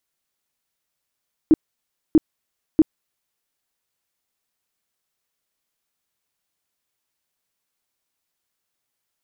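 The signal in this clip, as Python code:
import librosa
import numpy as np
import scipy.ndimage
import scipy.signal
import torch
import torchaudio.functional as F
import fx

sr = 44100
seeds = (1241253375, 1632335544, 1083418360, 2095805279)

y = fx.tone_burst(sr, hz=315.0, cycles=9, every_s=0.64, bursts=3, level_db=-8.0)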